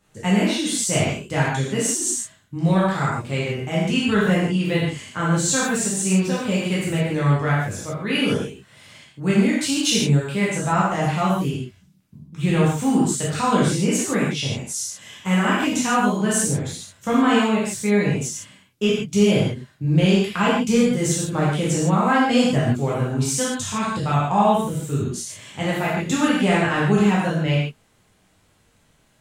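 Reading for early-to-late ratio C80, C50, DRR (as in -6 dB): 3.5 dB, 0.0 dB, -7.5 dB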